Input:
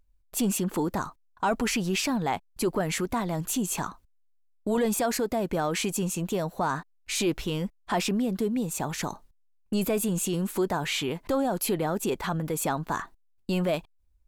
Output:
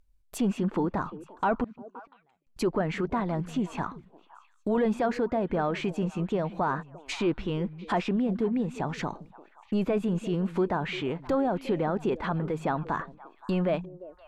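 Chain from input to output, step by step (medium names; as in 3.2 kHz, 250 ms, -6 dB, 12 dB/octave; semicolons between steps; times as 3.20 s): low-pass that closes with the level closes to 2.2 kHz, closed at -27 dBFS; 1.64–2.47 s: inverted gate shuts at -25 dBFS, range -42 dB; repeats whose band climbs or falls 174 ms, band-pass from 160 Hz, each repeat 1.4 oct, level -11 dB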